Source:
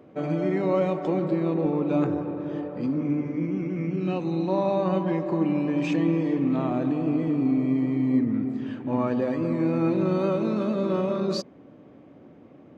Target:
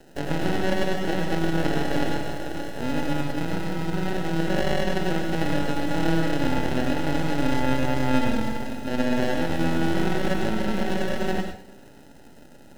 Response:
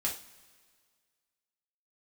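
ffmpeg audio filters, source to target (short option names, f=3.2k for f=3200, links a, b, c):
-filter_complex "[0:a]acrusher=samples=39:mix=1:aa=0.000001,acrossover=split=3800[a][b];[b]acompressor=threshold=-46dB:ratio=4:attack=1:release=60[c];[a][c]amix=inputs=2:normalize=0,aeval=exprs='max(val(0),0)':c=same,asplit=2[d][e];[1:a]atrim=start_sample=2205,adelay=100[f];[e][f]afir=irnorm=-1:irlink=0,volume=-7.5dB[g];[d][g]amix=inputs=2:normalize=0,volume=2.5dB"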